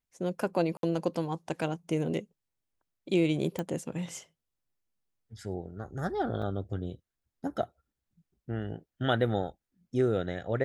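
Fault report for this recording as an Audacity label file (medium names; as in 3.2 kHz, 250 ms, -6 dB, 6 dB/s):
0.770000	0.830000	dropout 62 ms
3.590000	3.590000	pop -19 dBFS
6.420000	6.420000	dropout 2.7 ms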